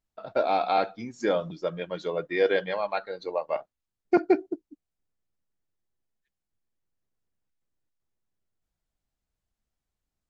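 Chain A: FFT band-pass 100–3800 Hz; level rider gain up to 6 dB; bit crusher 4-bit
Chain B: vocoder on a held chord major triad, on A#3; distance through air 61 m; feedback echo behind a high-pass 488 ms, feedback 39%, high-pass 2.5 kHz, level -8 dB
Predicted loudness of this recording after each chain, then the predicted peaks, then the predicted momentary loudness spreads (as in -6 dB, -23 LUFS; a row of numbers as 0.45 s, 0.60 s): -21.5 LUFS, -29.5 LUFS; -5.0 dBFS, -5.5 dBFS; 9 LU, 13 LU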